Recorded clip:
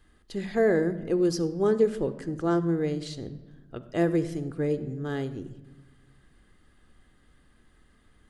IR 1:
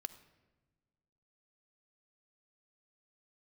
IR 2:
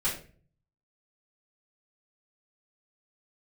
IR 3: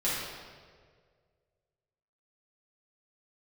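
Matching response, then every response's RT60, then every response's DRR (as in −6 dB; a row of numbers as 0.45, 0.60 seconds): 1; non-exponential decay, 0.40 s, 1.8 s; 12.5, −10.5, −10.0 decibels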